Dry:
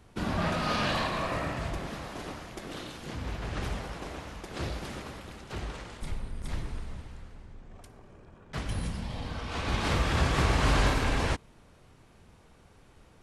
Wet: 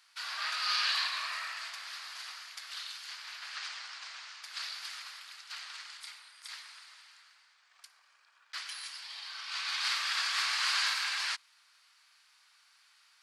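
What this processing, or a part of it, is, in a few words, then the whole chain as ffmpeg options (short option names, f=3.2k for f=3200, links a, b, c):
headphones lying on a table: -filter_complex "[0:a]asettb=1/sr,asplit=3[a][b][c];[a]atrim=end=3.574[d];[b]atrim=start=3.57:end=4.43,asetpts=PTS-STARTPTS,afade=t=in:d=0.004:c=qsin,afade=t=out:st=0.856:d=0.004:c=qsin,lowpass=f=8.1k:w=0.5412,lowpass=f=8.1k:w=1.3066[e];[c]atrim=start=4.426[f];[d][e]acrossfade=d=0.004:c1=hsin:c2=qsin[g];[g][f]acrossfade=d=0.004:c1=qsin:c2=hsin,highpass=f=1.3k:w=0.5412,highpass=f=1.3k:w=1.3066,equalizer=f=4.6k:t=o:w=0.46:g=10.5"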